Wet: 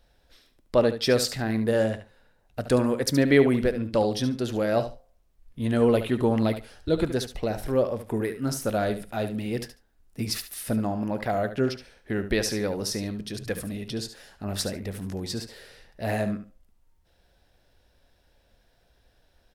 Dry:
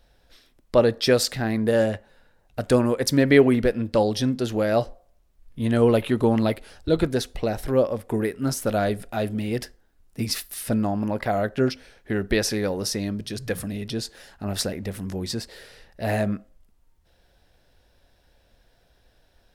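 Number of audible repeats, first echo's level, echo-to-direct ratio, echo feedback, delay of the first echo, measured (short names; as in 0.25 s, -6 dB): 2, -11.0 dB, -11.0 dB, 17%, 72 ms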